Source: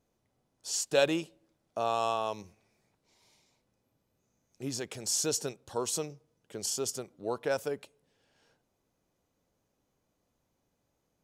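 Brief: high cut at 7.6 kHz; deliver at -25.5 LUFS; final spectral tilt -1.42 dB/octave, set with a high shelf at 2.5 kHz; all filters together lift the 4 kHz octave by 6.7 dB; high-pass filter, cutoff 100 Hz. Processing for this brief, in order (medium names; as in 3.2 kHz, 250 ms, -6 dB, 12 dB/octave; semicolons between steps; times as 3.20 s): high-pass 100 Hz; low-pass 7.6 kHz; treble shelf 2.5 kHz +5 dB; peaking EQ 4 kHz +4.5 dB; trim +4.5 dB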